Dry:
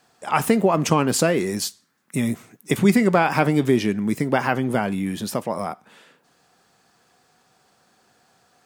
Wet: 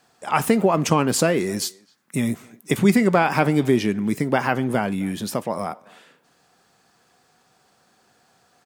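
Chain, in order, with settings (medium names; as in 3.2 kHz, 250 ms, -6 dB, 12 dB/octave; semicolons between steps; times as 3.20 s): speakerphone echo 260 ms, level -24 dB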